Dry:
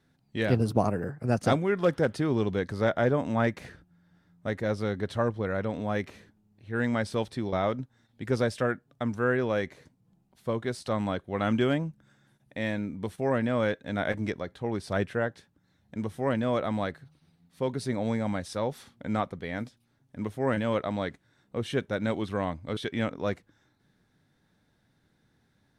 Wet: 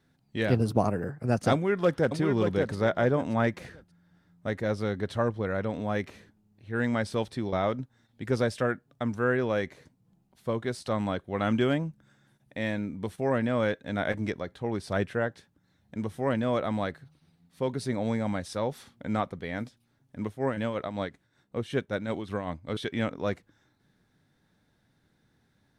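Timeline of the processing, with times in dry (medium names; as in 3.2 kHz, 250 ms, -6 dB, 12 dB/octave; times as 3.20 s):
1.53–2.17 s: echo throw 580 ms, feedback 25%, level -5.5 dB
20.26–22.71 s: tremolo 5.3 Hz, depth 56%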